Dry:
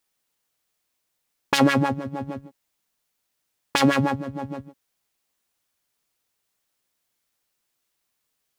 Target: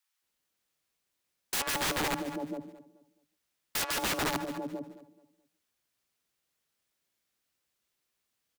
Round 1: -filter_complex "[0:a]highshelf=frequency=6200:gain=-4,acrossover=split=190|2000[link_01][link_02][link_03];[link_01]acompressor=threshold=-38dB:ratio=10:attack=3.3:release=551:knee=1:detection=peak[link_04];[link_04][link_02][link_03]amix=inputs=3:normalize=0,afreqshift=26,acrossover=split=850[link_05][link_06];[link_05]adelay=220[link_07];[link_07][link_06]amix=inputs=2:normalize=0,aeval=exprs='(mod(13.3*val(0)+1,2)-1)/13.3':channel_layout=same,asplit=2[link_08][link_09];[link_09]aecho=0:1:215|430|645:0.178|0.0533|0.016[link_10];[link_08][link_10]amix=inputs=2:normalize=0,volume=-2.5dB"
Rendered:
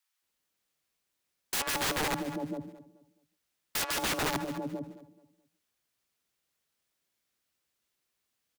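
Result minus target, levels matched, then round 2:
downward compressor: peak gain reduction −10.5 dB
-filter_complex "[0:a]highshelf=frequency=6200:gain=-4,acrossover=split=190|2000[link_01][link_02][link_03];[link_01]acompressor=threshold=-49.5dB:ratio=10:attack=3.3:release=551:knee=1:detection=peak[link_04];[link_04][link_02][link_03]amix=inputs=3:normalize=0,afreqshift=26,acrossover=split=850[link_05][link_06];[link_05]adelay=220[link_07];[link_07][link_06]amix=inputs=2:normalize=0,aeval=exprs='(mod(13.3*val(0)+1,2)-1)/13.3':channel_layout=same,asplit=2[link_08][link_09];[link_09]aecho=0:1:215|430|645:0.178|0.0533|0.016[link_10];[link_08][link_10]amix=inputs=2:normalize=0,volume=-2.5dB"

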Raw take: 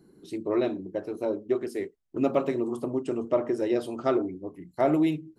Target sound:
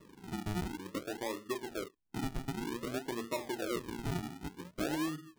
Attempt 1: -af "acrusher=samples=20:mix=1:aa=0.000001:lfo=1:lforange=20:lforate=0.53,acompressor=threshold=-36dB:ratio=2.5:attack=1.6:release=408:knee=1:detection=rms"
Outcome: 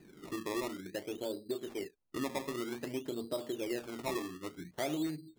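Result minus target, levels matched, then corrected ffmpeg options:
sample-and-hold swept by an LFO: distortion −14 dB
-af "acrusher=samples=56:mix=1:aa=0.000001:lfo=1:lforange=56:lforate=0.53,acompressor=threshold=-36dB:ratio=2.5:attack=1.6:release=408:knee=1:detection=rms"

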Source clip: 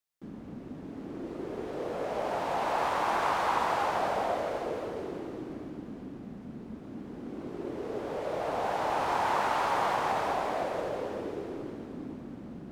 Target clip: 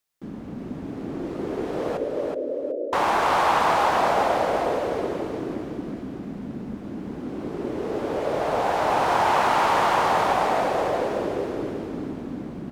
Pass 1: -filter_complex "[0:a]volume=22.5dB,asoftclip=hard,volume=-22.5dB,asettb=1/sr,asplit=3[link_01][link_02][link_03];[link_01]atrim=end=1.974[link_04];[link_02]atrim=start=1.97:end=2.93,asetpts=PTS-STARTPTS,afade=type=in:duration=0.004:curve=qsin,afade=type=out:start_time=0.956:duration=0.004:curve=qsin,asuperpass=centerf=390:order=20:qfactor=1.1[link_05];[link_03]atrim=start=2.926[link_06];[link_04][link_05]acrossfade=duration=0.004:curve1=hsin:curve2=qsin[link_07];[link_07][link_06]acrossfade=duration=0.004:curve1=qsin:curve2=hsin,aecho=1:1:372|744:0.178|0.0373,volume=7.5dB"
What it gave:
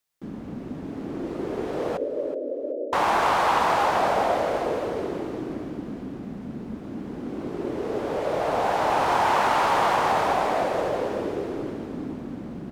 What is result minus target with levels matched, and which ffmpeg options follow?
echo-to-direct −10 dB
-filter_complex "[0:a]volume=22.5dB,asoftclip=hard,volume=-22.5dB,asettb=1/sr,asplit=3[link_01][link_02][link_03];[link_01]atrim=end=1.974[link_04];[link_02]atrim=start=1.97:end=2.93,asetpts=PTS-STARTPTS,afade=type=in:duration=0.004:curve=qsin,afade=type=out:start_time=0.956:duration=0.004:curve=qsin,asuperpass=centerf=390:order=20:qfactor=1.1[link_05];[link_03]atrim=start=2.926[link_06];[link_04][link_05]acrossfade=duration=0.004:curve1=hsin:curve2=qsin[link_07];[link_07][link_06]acrossfade=duration=0.004:curve1=qsin:curve2=hsin,aecho=1:1:372|744|1116:0.562|0.118|0.0248,volume=7.5dB"

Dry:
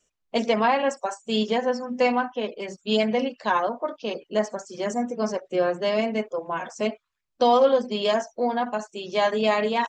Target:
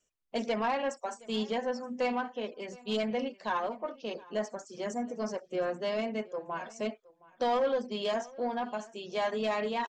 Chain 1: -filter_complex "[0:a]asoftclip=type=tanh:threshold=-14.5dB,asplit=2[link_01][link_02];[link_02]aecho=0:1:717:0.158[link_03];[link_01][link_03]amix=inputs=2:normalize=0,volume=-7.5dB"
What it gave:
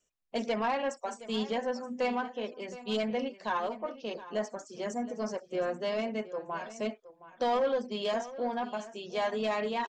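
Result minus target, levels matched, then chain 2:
echo-to-direct +6.5 dB
-filter_complex "[0:a]asoftclip=type=tanh:threshold=-14.5dB,asplit=2[link_01][link_02];[link_02]aecho=0:1:717:0.075[link_03];[link_01][link_03]amix=inputs=2:normalize=0,volume=-7.5dB"

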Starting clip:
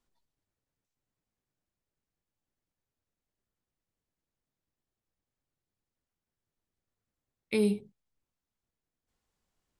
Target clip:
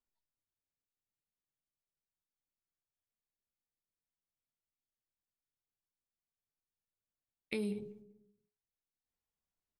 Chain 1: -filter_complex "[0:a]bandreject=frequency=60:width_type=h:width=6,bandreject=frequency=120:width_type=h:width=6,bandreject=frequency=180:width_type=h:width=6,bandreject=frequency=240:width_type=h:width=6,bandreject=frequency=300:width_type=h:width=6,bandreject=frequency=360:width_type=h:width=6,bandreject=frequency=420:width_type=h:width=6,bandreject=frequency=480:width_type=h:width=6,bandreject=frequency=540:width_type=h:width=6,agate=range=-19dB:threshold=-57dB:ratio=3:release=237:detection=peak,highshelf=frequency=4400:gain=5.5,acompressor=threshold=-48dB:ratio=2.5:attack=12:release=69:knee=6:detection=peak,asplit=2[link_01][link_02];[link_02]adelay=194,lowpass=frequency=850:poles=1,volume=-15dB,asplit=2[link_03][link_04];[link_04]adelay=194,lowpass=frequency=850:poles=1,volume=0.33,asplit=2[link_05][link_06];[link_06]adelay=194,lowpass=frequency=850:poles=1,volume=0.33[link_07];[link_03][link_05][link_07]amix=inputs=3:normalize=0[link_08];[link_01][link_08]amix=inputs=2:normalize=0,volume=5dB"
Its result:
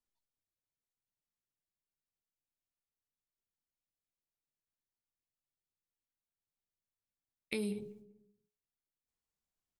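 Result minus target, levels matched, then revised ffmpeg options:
8,000 Hz band +6.5 dB
-filter_complex "[0:a]bandreject=frequency=60:width_type=h:width=6,bandreject=frequency=120:width_type=h:width=6,bandreject=frequency=180:width_type=h:width=6,bandreject=frequency=240:width_type=h:width=6,bandreject=frequency=300:width_type=h:width=6,bandreject=frequency=360:width_type=h:width=6,bandreject=frequency=420:width_type=h:width=6,bandreject=frequency=480:width_type=h:width=6,bandreject=frequency=540:width_type=h:width=6,agate=range=-19dB:threshold=-57dB:ratio=3:release=237:detection=peak,highshelf=frequency=4400:gain=-2.5,acompressor=threshold=-48dB:ratio=2.5:attack=12:release=69:knee=6:detection=peak,asplit=2[link_01][link_02];[link_02]adelay=194,lowpass=frequency=850:poles=1,volume=-15dB,asplit=2[link_03][link_04];[link_04]adelay=194,lowpass=frequency=850:poles=1,volume=0.33,asplit=2[link_05][link_06];[link_06]adelay=194,lowpass=frequency=850:poles=1,volume=0.33[link_07];[link_03][link_05][link_07]amix=inputs=3:normalize=0[link_08];[link_01][link_08]amix=inputs=2:normalize=0,volume=5dB"

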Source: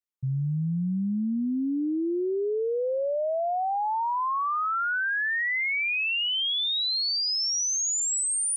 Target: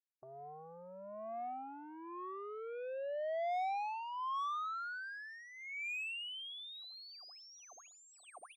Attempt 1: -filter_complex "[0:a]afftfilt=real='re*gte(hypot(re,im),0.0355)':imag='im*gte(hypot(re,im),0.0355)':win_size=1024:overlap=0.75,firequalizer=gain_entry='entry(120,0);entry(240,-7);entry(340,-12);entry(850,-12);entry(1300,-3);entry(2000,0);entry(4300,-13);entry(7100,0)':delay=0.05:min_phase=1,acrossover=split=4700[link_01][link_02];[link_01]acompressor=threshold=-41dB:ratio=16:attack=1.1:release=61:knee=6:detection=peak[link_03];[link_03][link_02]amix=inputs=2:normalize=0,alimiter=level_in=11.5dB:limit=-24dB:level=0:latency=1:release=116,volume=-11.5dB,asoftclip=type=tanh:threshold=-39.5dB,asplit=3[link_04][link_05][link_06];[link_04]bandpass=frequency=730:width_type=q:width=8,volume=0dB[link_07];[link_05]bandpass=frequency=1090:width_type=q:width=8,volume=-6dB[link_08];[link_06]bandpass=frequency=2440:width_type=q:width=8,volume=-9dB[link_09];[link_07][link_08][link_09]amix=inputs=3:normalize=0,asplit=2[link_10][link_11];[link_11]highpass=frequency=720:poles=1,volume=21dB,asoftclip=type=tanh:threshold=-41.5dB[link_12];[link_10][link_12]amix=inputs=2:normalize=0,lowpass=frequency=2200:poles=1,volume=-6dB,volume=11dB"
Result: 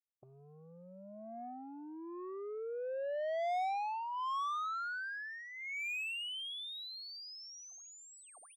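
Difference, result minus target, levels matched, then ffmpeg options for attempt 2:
soft clipping: distortion −7 dB
-filter_complex "[0:a]afftfilt=real='re*gte(hypot(re,im),0.0355)':imag='im*gte(hypot(re,im),0.0355)':win_size=1024:overlap=0.75,firequalizer=gain_entry='entry(120,0);entry(240,-7);entry(340,-12);entry(850,-12);entry(1300,-3);entry(2000,0);entry(4300,-13);entry(7100,0)':delay=0.05:min_phase=1,acrossover=split=4700[link_01][link_02];[link_01]acompressor=threshold=-41dB:ratio=16:attack=1.1:release=61:knee=6:detection=peak[link_03];[link_03][link_02]amix=inputs=2:normalize=0,alimiter=level_in=11.5dB:limit=-24dB:level=0:latency=1:release=116,volume=-11.5dB,asoftclip=type=tanh:threshold=-48dB,asplit=3[link_04][link_05][link_06];[link_04]bandpass=frequency=730:width_type=q:width=8,volume=0dB[link_07];[link_05]bandpass=frequency=1090:width_type=q:width=8,volume=-6dB[link_08];[link_06]bandpass=frequency=2440:width_type=q:width=8,volume=-9dB[link_09];[link_07][link_08][link_09]amix=inputs=3:normalize=0,asplit=2[link_10][link_11];[link_11]highpass=frequency=720:poles=1,volume=21dB,asoftclip=type=tanh:threshold=-41.5dB[link_12];[link_10][link_12]amix=inputs=2:normalize=0,lowpass=frequency=2200:poles=1,volume=-6dB,volume=11dB"

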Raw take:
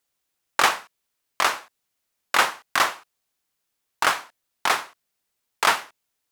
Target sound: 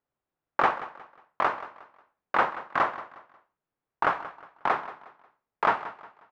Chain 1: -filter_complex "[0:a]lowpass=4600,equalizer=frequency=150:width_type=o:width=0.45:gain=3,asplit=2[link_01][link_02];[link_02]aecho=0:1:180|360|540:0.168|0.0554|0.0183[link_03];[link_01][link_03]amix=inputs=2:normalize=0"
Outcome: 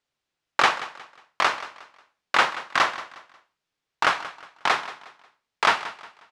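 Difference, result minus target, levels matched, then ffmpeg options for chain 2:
4,000 Hz band +12.5 dB
-filter_complex "[0:a]lowpass=1200,equalizer=frequency=150:width_type=o:width=0.45:gain=3,asplit=2[link_01][link_02];[link_02]aecho=0:1:180|360|540:0.168|0.0554|0.0183[link_03];[link_01][link_03]amix=inputs=2:normalize=0"

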